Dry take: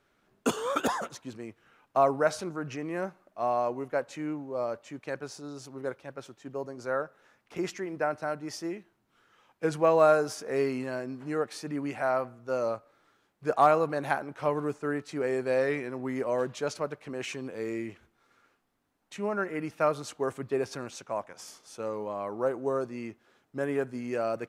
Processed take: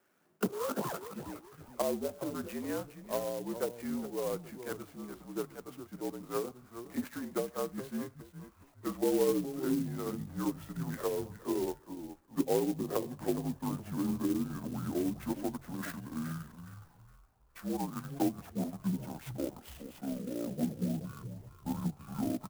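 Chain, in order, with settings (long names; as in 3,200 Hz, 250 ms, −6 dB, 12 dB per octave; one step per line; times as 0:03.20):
pitch glide at a constant tempo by −12 semitones starting unshifted
treble cut that deepens with the level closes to 400 Hz, closed at −25 dBFS
mains-hum notches 60/120/180 Hz
single-sideband voice off tune −53 Hz 190–3,300 Hz
wrong playback speed 44.1 kHz file played as 48 kHz
echo with shifted repeats 415 ms, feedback 33%, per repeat −60 Hz, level −11 dB
converter with an unsteady clock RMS 0.066 ms
level −1.5 dB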